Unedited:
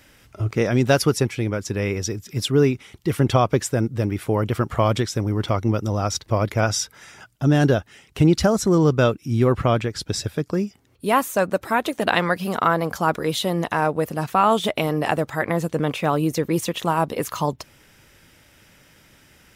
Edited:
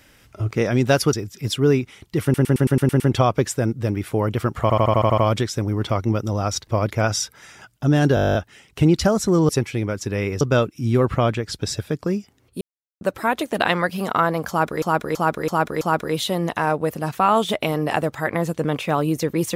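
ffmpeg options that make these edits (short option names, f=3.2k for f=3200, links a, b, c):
-filter_complex "[0:a]asplit=34[a][b][c][d][e][f][g][h][i][j][k][l][m][n][o][p][q][r][s][t][u][v][w][x][y][z][aa][ab][ac][ad][ae][af][ag][ah];[a]atrim=end=1.132[ai];[b]atrim=start=2.048:end=3.262[aj];[c]atrim=start=3.148:end=3.262[ak];[d]atrim=start=3.148:end=3.262[al];[e]atrim=start=3.148:end=3.262[am];[f]atrim=start=3.148:end=3.262[an];[g]atrim=start=3.148:end=3.262[ao];[h]atrim=start=3.148:end=3.262[ap];[i]atrim=start=3.148:end=4.852[aq];[j]atrim=start=4.768:end=4.852[ar];[k]atrim=start=4.768:end=4.852[as];[l]atrim=start=4.768:end=4.852[at];[m]atrim=start=4.768:end=4.852[au];[n]atrim=start=4.768:end=4.852[av];[o]atrim=start=4.768:end=4.852[aw];[p]atrim=start=4.768:end=7.762[ax];[q]atrim=start=7.738:end=7.762[ay];[r]atrim=start=7.738:end=7.762[az];[s]atrim=start=7.738:end=7.762[ba];[t]atrim=start=7.738:end=7.762[bb];[u]atrim=start=7.738:end=7.762[bc];[v]atrim=start=7.738:end=7.762[bd];[w]atrim=start=7.738:end=7.762[be];[x]atrim=start=7.738:end=7.762[bf];[y]atrim=start=7.738:end=7.762[bg];[z]atrim=start=7.738:end=8.882[bh];[aa]atrim=start=1.128:end=2.052[bi];[ab]atrim=start=8.878:end=11.08,asetpts=PTS-STARTPTS,afade=t=out:st=2.198:d=0.004:c=hsin[bj];[ac]atrim=start=11.08:end=11.48,asetpts=PTS-STARTPTS,volume=0[bk];[ad]atrim=start=11.48:end=13.292,asetpts=PTS-STARTPTS,afade=t=in:d=0.004:c=hsin[bl];[ae]atrim=start=12.958:end=13.292[bm];[af]atrim=start=12.958:end=13.292[bn];[ag]atrim=start=12.958:end=13.292[bo];[ah]atrim=start=12.958[bp];[ai][aj]acrossfade=d=0.004:c1=hsin:c2=hsin[bq];[bq][ak]acrossfade=d=0.004:c1=hsin:c2=hsin[br];[br][al]acrossfade=d=0.004:c1=hsin:c2=hsin[bs];[bs][am]acrossfade=d=0.004:c1=hsin:c2=hsin[bt];[bt][an]acrossfade=d=0.004:c1=hsin:c2=hsin[bu];[bu][ao]acrossfade=d=0.004:c1=hsin:c2=hsin[bv];[bv][ap]acrossfade=d=0.004:c1=hsin:c2=hsin[bw];[bw][aq]acrossfade=d=0.004:c1=hsin:c2=hsin[bx];[bx][ar]acrossfade=d=0.004:c1=hsin:c2=hsin[by];[by][as]acrossfade=d=0.004:c1=hsin:c2=hsin[bz];[bz][at]acrossfade=d=0.004:c1=hsin:c2=hsin[ca];[ca][au]acrossfade=d=0.004:c1=hsin:c2=hsin[cb];[cb][av]acrossfade=d=0.004:c1=hsin:c2=hsin[cc];[cc][aw]acrossfade=d=0.004:c1=hsin:c2=hsin[cd];[cd][ax]acrossfade=d=0.004:c1=hsin:c2=hsin[ce];[ce][ay]acrossfade=d=0.004:c1=hsin:c2=hsin[cf];[cf][az]acrossfade=d=0.004:c1=hsin:c2=hsin[cg];[cg][ba]acrossfade=d=0.004:c1=hsin:c2=hsin[ch];[ch][bb]acrossfade=d=0.004:c1=hsin:c2=hsin[ci];[ci][bc]acrossfade=d=0.004:c1=hsin:c2=hsin[cj];[cj][bd]acrossfade=d=0.004:c1=hsin:c2=hsin[ck];[ck][be]acrossfade=d=0.004:c1=hsin:c2=hsin[cl];[cl][bf]acrossfade=d=0.004:c1=hsin:c2=hsin[cm];[cm][bg]acrossfade=d=0.004:c1=hsin:c2=hsin[cn];[cn][bh]acrossfade=d=0.004:c1=hsin:c2=hsin[co];[co][bi]acrossfade=d=0.004:c1=hsin:c2=hsin[cp];[bj][bk][bl]concat=n=3:v=0:a=1[cq];[cp][cq]acrossfade=d=0.004:c1=hsin:c2=hsin[cr];[cr][bm]acrossfade=d=0.004:c1=hsin:c2=hsin[cs];[cs][bn]acrossfade=d=0.004:c1=hsin:c2=hsin[ct];[ct][bo]acrossfade=d=0.004:c1=hsin:c2=hsin[cu];[cu][bp]acrossfade=d=0.004:c1=hsin:c2=hsin"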